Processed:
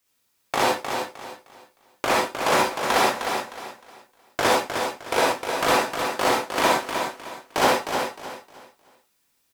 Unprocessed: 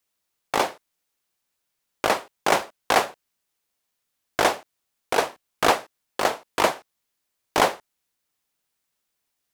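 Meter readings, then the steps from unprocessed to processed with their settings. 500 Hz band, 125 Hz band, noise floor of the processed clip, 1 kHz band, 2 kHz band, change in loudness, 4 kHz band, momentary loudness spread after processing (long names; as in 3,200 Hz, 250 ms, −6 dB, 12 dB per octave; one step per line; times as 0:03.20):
+2.0 dB, +3.5 dB, −69 dBFS, +2.5 dB, +2.5 dB, +1.0 dB, +3.0 dB, 16 LU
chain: brickwall limiter −16 dBFS, peak gain reduction 11 dB
repeating echo 308 ms, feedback 29%, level −6.5 dB
reverb whose tail is shaped and stops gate 90 ms rising, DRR −3 dB
level +4 dB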